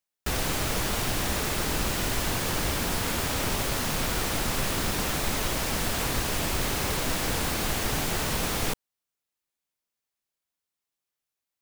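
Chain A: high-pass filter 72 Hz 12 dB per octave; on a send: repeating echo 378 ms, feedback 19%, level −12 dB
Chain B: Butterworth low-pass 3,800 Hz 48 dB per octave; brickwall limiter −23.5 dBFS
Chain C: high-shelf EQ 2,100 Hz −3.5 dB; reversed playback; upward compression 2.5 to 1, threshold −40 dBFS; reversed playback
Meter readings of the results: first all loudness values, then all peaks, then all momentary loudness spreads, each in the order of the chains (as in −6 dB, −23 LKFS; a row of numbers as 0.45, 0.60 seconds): −27.5, −33.0, −29.0 LKFS; −14.5, −23.5, −15.0 dBFS; 1, 1, 0 LU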